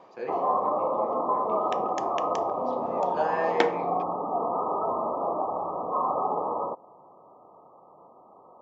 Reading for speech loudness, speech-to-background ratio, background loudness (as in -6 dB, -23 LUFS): -31.5 LUFS, -3.5 dB, -28.0 LUFS